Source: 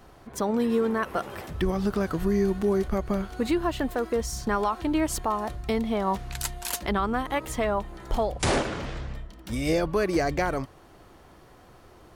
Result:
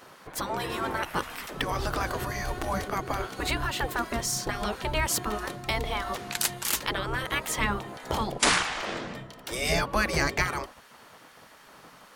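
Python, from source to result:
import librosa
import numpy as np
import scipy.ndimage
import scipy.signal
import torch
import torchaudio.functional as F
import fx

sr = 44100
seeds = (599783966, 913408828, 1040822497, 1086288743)

y = fx.hum_notches(x, sr, base_hz=50, count=8)
y = fx.spec_gate(y, sr, threshold_db=-10, keep='weak')
y = y * librosa.db_to_amplitude(7.0)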